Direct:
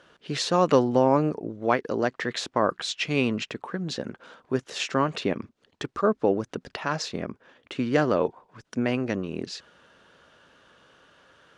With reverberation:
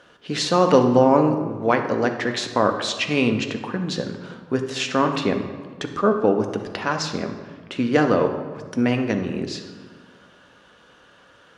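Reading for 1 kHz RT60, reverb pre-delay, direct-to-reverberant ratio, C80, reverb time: 1.6 s, 4 ms, 5.0 dB, 9.5 dB, 1.6 s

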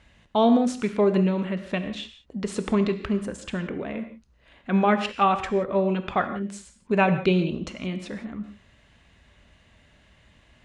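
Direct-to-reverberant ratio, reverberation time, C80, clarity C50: 8.5 dB, non-exponential decay, 12.0 dB, 10.5 dB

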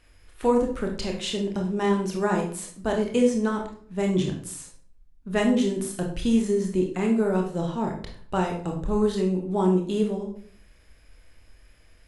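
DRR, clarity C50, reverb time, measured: 1.0 dB, 6.5 dB, 0.55 s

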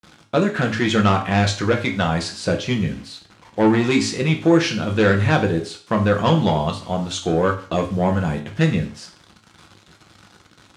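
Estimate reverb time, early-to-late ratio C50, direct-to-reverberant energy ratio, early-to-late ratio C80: 0.45 s, 11.0 dB, 2.5 dB, 15.5 dB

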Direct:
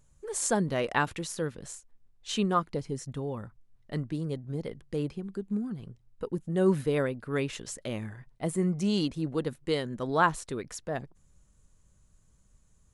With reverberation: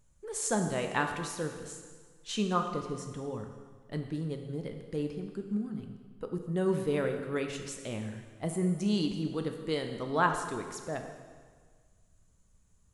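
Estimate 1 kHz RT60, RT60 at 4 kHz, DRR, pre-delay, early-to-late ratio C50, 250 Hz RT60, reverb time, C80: 1.6 s, 1.5 s, 4.5 dB, 6 ms, 6.5 dB, 1.6 s, 1.6 s, 8.0 dB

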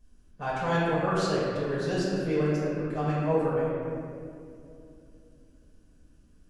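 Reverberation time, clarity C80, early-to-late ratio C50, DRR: 2.6 s, −0.5 dB, −2.5 dB, −9.0 dB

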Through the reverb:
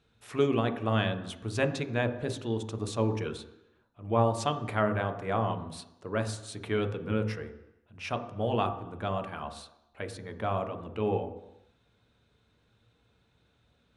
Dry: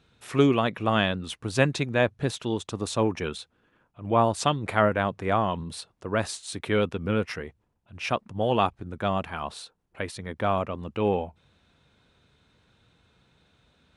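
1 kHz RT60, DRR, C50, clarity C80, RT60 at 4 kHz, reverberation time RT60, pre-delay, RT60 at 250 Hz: 0.95 s, 6.0 dB, 11.5 dB, 13.0 dB, 0.90 s, 0.90 s, 3 ms, 0.90 s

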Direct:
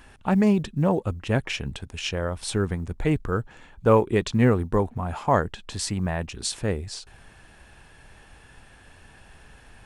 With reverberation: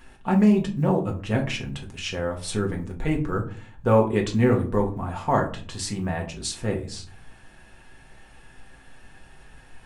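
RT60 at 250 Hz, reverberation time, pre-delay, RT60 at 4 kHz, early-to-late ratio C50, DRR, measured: 0.65 s, 0.45 s, 4 ms, 0.25 s, 11.5 dB, 0.0 dB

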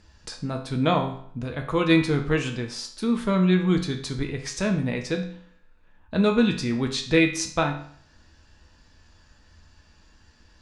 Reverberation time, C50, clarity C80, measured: 0.55 s, 9.0 dB, 12.5 dB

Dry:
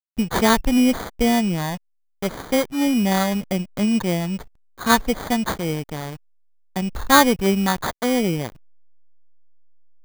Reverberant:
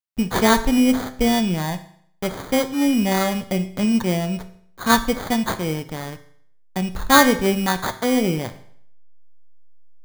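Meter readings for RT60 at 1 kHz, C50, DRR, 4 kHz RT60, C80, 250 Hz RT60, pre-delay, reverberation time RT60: 0.60 s, 13.5 dB, 9.0 dB, 0.60 s, 17.0 dB, 0.60 s, 8 ms, 0.60 s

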